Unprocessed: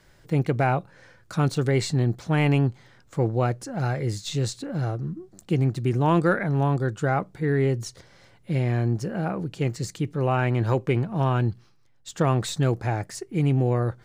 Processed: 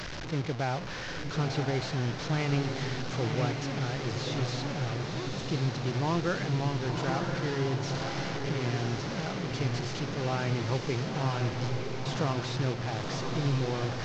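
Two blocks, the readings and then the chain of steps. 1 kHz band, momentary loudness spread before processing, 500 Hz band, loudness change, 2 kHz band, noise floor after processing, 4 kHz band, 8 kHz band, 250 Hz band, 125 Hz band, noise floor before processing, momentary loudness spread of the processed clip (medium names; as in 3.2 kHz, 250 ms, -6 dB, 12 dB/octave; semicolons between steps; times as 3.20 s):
-5.5 dB, 8 LU, -6.5 dB, -6.5 dB, -3.0 dB, -37 dBFS, +2.0 dB, -4.5 dB, -6.5 dB, -7.0 dB, -57 dBFS, 4 LU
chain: one-bit delta coder 32 kbps, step -23 dBFS; echo that smears into a reverb 1016 ms, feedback 57%, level -3.5 dB; trim -9 dB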